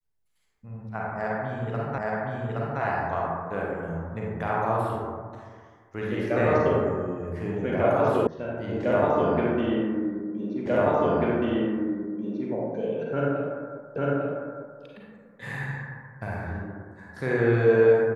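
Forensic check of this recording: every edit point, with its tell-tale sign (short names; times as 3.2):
1.98 repeat of the last 0.82 s
8.27 sound cut off
10.66 repeat of the last 1.84 s
13.96 repeat of the last 0.85 s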